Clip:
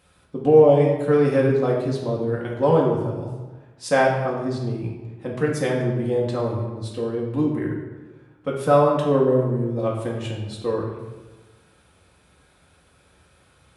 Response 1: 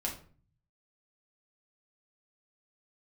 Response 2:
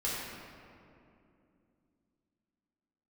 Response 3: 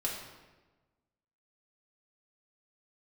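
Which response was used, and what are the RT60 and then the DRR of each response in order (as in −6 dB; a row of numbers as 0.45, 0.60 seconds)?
3; 0.45, 2.7, 1.2 seconds; −3.0, −7.5, −3.5 decibels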